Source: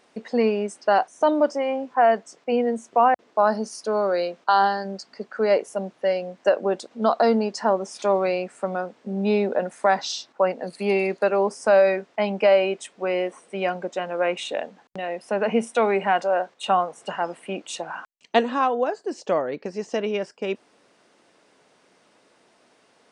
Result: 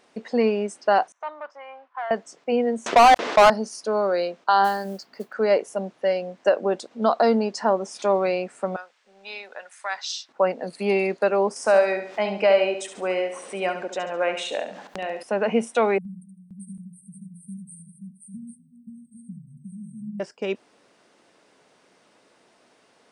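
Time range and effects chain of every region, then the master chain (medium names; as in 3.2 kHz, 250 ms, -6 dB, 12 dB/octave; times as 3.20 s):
1.12–2.11 s: waveshaping leveller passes 1 + ladder band-pass 1.4 kHz, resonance 35%
2.86–3.50 s: distance through air 56 m + overdrive pedal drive 23 dB, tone 7.6 kHz, clips at -6.5 dBFS + level flattener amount 50%
4.64–5.33 s: distance through air 56 m + modulation noise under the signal 24 dB
8.76–10.29 s: high-pass 1.5 kHz + AM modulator 180 Hz, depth 15%
11.56–15.23 s: bass shelf 230 Hz -8 dB + upward compressor, threshold -28 dBFS + feedback delay 70 ms, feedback 42%, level -9 dB
15.98–20.20 s: brick-wall FIR band-stop 220–8200 Hz + multi-tap echo 72/155/527/612/799 ms -5.5/-18.5/-3/-16.5/-8 dB
whole clip: none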